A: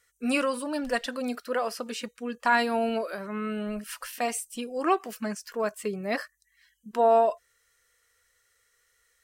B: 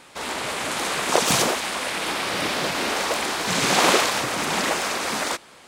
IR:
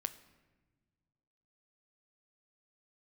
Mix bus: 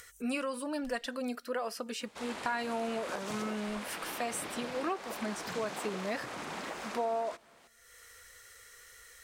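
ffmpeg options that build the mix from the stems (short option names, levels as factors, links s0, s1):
-filter_complex "[0:a]acompressor=mode=upward:threshold=0.0178:ratio=2.5,volume=0.596,asplit=2[s0][s1];[s1]volume=0.106[s2];[1:a]highshelf=f=11000:g=-6,acompressor=threshold=0.0708:ratio=6,adynamicequalizer=threshold=0.00447:dfrequency=2300:dqfactor=0.7:tfrequency=2300:tqfactor=0.7:attack=5:release=100:ratio=0.375:range=2.5:mode=cutabove:tftype=highshelf,adelay=2000,volume=0.237[s3];[2:a]atrim=start_sample=2205[s4];[s2][s4]afir=irnorm=-1:irlink=0[s5];[s0][s3][s5]amix=inputs=3:normalize=0,acompressor=threshold=0.0282:ratio=4"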